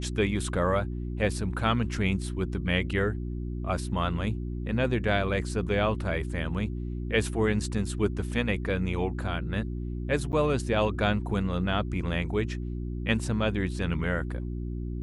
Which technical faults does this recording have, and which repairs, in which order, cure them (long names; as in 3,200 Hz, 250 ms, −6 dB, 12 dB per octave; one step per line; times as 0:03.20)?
mains hum 60 Hz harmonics 6 −33 dBFS
0:10.32–0:10.33: drop-out 9.5 ms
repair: hum removal 60 Hz, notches 6
repair the gap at 0:10.32, 9.5 ms